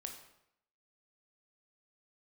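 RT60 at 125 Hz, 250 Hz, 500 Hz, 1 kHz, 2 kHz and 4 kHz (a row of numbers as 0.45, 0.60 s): 0.75, 0.75, 0.75, 0.75, 0.70, 0.60 s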